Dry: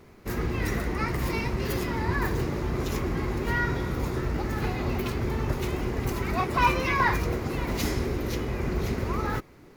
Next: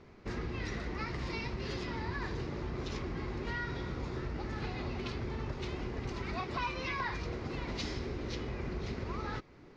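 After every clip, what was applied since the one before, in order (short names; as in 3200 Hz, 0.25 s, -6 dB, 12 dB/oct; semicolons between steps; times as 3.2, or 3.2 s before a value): LPF 5700 Hz 24 dB/oct; dynamic EQ 4200 Hz, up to +7 dB, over -47 dBFS, Q 1; compressor 3:1, threshold -32 dBFS, peak gain reduction 12.5 dB; gain -4 dB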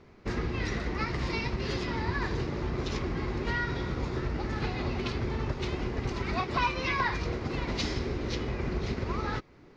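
upward expander 1.5:1, over -48 dBFS; gain +8.5 dB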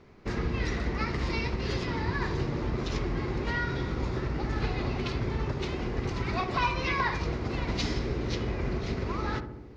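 darkening echo 68 ms, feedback 75%, low-pass 980 Hz, level -7.5 dB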